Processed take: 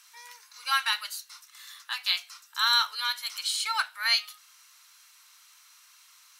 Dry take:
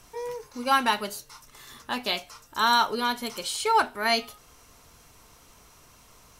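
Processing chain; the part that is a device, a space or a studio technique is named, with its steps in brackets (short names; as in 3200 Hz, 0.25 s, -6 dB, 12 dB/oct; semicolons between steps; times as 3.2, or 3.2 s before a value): headphones lying on a table (HPF 1300 Hz 24 dB/oct; bell 4100 Hz +5 dB 0.33 oct)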